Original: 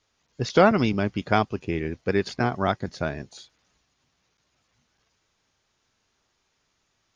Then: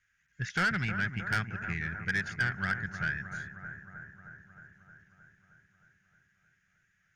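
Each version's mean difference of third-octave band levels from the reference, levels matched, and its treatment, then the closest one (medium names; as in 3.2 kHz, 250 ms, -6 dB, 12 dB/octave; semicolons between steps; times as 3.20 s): 8.5 dB: FFT filter 180 Hz 0 dB, 270 Hz -16 dB, 620 Hz -20 dB, 1.1 kHz -13 dB, 1.6 kHz +15 dB, 4.3 kHz -13 dB, 6.6 kHz -2 dB; saturation -18 dBFS, distortion -10 dB; bucket-brigade echo 311 ms, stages 4096, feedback 70%, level -9.5 dB; trim -5 dB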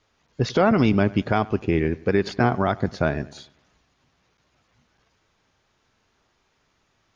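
3.5 dB: treble shelf 4.3 kHz -11.5 dB; peak limiter -16 dBFS, peak gain reduction 10 dB; bucket-brigade echo 97 ms, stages 2048, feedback 44%, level -21 dB; trim +7 dB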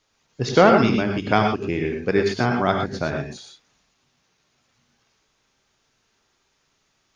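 4.5 dB: peaking EQ 67 Hz -4.5 dB 0.79 oct; hum notches 50/100 Hz; gated-style reverb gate 140 ms rising, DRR 2.5 dB; trim +2.5 dB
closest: second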